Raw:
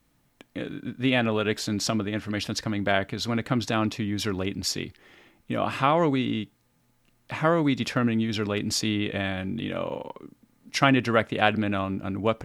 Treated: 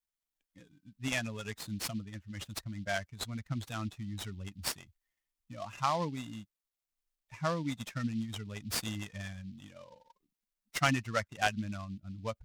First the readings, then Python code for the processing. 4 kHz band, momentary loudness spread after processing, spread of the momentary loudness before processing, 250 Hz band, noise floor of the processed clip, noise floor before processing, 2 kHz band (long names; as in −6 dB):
−10.0 dB, 13 LU, 12 LU, −13.5 dB, below −85 dBFS, −67 dBFS, −9.0 dB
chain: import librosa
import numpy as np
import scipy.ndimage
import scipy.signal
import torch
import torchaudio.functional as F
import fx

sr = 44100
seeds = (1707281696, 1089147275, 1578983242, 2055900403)

y = fx.bin_expand(x, sr, power=2.0)
y = fx.peak_eq(y, sr, hz=390.0, db=-14.0, octaves=0.79)
y = fx.noise_mod_delay(y, sr, seeds[0], noise_hz=3400.0, depth_ms=0.031)
y = F.gain(torch.from_numpy(y), -3.5).numpy()